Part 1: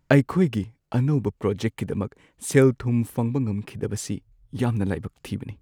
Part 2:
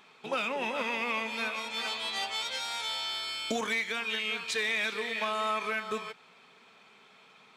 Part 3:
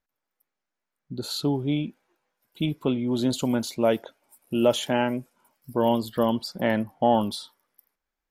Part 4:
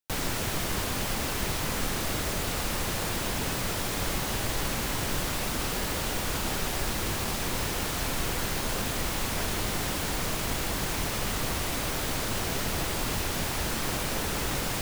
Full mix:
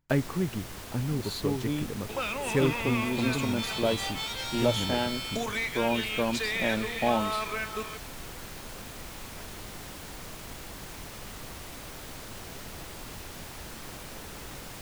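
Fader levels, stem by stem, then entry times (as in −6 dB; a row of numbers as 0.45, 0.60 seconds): −9.0, −1.0, −6.0, −12.0 decibels; 0.00, 1.85, 0.00, 0.00 seconds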